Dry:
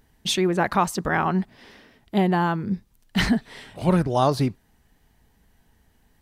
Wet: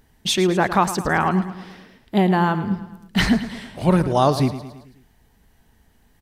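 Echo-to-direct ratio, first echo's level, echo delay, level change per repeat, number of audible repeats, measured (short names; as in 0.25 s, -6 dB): -11.5 dB, -13.0 dB, 0.109 s, -5.5 dB, 4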